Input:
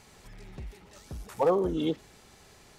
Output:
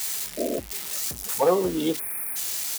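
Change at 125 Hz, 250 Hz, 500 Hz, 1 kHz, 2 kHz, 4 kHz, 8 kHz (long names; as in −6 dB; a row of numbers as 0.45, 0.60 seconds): 0.0 dB, +4.0 dB, +4.5 dB, +4.5 dB, +10.5 dB, +13.0 dB, can't be measured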